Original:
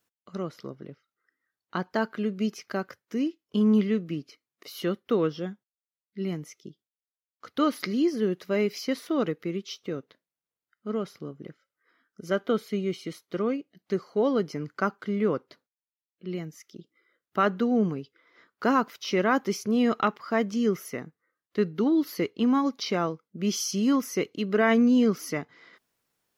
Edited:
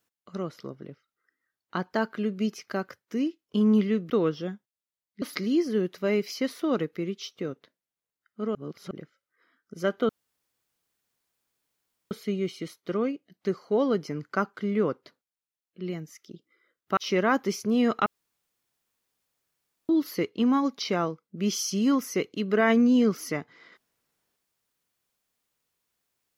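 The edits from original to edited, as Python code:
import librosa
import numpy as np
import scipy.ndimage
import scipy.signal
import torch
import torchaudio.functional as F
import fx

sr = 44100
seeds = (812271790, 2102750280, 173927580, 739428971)

y = fx.edit(x, sr, fx.cut(start_s=4.1, length_s=0.98),
    fx.cut(start_s=6.2, length_s=1.49),
    fx.reverse_span(start_s=11.02, length_s=0.36),
    fx.insert_room_tone(at_s=12.56, length_s=2.02),
    fx.cut(start_s=17.42, length_s=1.56),
    fx.room_tone_fill(start_s=20.07, length_s=1.83), tone=tone)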